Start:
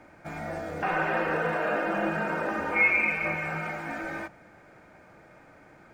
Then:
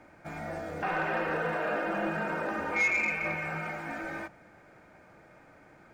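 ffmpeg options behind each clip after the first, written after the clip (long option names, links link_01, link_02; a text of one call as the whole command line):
ffmpeg -i in.wav -af "asoftclip=type=tanh:threshold=-17.5dB,volume=-2.5dB" out.wav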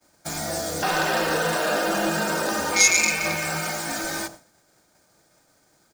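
ffmpeg -i in.wav -filter_complex "[0:a]agate=range=-33dB:threshold=-45dB:ratio=3:detection=peak,acrossover=split=160|1200[link_01][link_02][link_03];[link_02]aecho=1:1:91:0.266[link_04];[link_03]aexciter=amount=10.7:drive=5.7:freq=3500[link_05];[link_01][link_04][link_05]amix=inputs=3:normalize=0,volume=7dB" out.wav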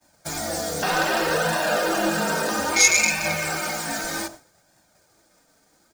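ffmpeg -i in.wav -af "flanger=delay=1.1:depth=3.4:regen=-36:speed=0.63:shape=sinusoidal,volume=4.5dB" out.wav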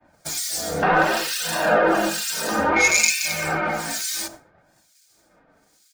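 ffmpeg -i in.wav -filter_complex "[0:a]acrossover=split=2400[link_01][link_02];[link_01]aeval=exprs='val(0)*(1-1/2+1/2*cos(2*PI*1.1*n/s))':channel_layout=same[link_03];[link_02]aeval=exprs='val(0)*(1-1/2-1/2*cos(2*PI*1.1*n/s))':channel_layout=same[link_04];[link_03][link_04]amix=inputs=2:normalize=0,volume=6.5dB" out.wav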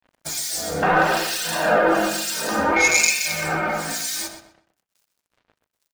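ffmpeg -i in.wav -filter_complex "[0:a]acrusher=bits=7:mix=0:aa=0.5,asplit=2[link_01][link_02];[link_02]adelay=125,lowpass=frequency=4200:poles=1,volume=-9.5dB,asplit=2[link_03][link_04];[link_04]adelay=125,lowpass=frequency=4200:poles=1,volume=0.27,asplit=2[link_05][link_06];[link_06]adelay=125,lowpass=frequency=4200:poles=1,volume=0.27[link_07];[link_03][link_05][link_07]amix=inputs=3:normalize=0[link_08];[link_01][link_08]amix=inputs=2:normalize=0" out.wav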